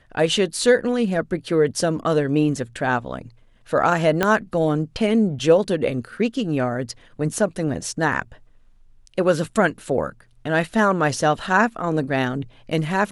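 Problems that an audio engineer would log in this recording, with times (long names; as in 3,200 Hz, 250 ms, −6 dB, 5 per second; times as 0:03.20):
0:04.23: click −5 dBFS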